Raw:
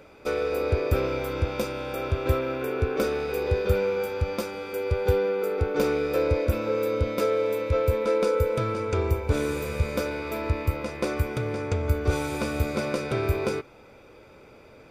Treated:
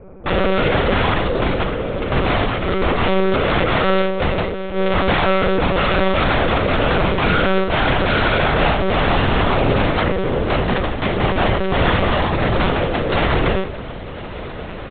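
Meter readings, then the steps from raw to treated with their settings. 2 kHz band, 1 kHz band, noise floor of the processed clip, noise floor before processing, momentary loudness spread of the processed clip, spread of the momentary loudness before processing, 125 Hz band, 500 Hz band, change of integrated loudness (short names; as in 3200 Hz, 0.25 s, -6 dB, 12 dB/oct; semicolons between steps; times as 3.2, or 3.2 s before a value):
+14.5 dB, +15.0 dB, -30 dBFS, -51 dBFS, 6 LU, 6 LU, +7.5 dB, +6.0 dB, +9.0 dB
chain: LPF 1400 Hz 12 dB/oct; tilt -3.5 dB/oct; de-hum 48.02 Hz, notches 4; in parallel at -3 dB: limiter -9.5 dBFS, peak gain reduction 9 dB; on the sum: wrapped overs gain 12 dB; doubler 43 ms -10.5 dB; diffused feedback echo 1.283 s, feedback 52%, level -14 dB; Schroeder reverb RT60 0.46 s, combs from 25 ms, DRR 2.5 dB; monotone LPC vocoder at 8 kHz 190 Hz; gain -1 dB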